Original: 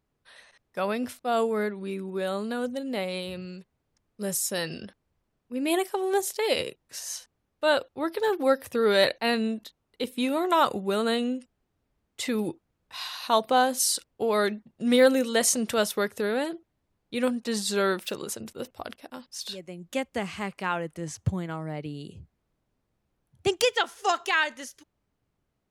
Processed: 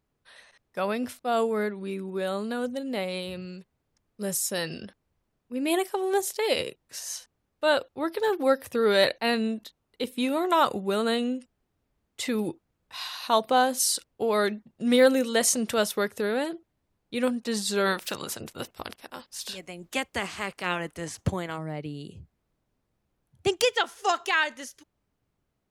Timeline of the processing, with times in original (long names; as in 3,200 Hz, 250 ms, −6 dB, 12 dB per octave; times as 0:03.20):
0:17.85–0:21.57: ceiling on every frequency bin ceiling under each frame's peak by 14 dB